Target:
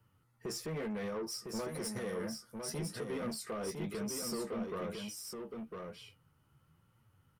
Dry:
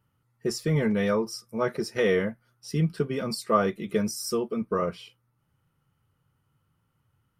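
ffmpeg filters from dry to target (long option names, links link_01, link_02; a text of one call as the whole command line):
ffmpeg -i in.wav -filter_complex "[0:a]flanger=delay=8.5:depth=7:regen=41:speed=1:shape=triangular,acrossover=split=230|790|2400|5100[link_01][link_02][link_03][link_04][link_05];[link_01]acompressor=threshold=-42dB:ratio=4[link_06];[link_02]acompressor=threshold=-30dB:ratio=4[link_07];[link_03]acompressor=threshold=-43dB:ratio=4[link_08];[link_04]acompressor=threshold=-58dB:ratio=4[link_09];[link_05]acompressor=threshold=-42dB:ratio=4[link_10];[link_06][link_07][link_08][link_09][link_10]amix=inputs=5:normalize=0,alimiter=level_in=7.5dB:limit=-24dB:level=0:latency=1:release=95,volume=-7.5dB,asettb=1/sr,asplit=3[link_11][link_12][link_13];[link_11]atrim=end=1.614[link_14];[link_12]atrim=start=1.61:end=2.7,asetpts=PTS-STARTPTS,afade=type=in:duration=0.004:curve=qsin,afade=type=out:start_time=1.086:duration=0.004:curve=qsin,equalizer=frequency=400:width_type=o:width=0.67:gain=-5,equalizer=frequency=2500:width_type=o:width=0.67:gain=-9,equalizer=frequency=10000:width_type=o:width=0.67:gain=12[link_15];[link_13]atrim=start=2.696[link_16];[link_14][link_15]acrossfade=duration=0.004:curve1=hsin:curve2=qsin[link_17];[link_17][link_16]acrossfade=duration=0.004:curve1=qsin:curve2=hsin,asoftclip=type=tanh:threshold=-39.5dB,asplit=2[link_18][link_19];[link_19]aecho=0:1:1005:0.562[link_20];[link_18][link_20]amix=inputs=2:normalize=0,volume=5dB" out.wav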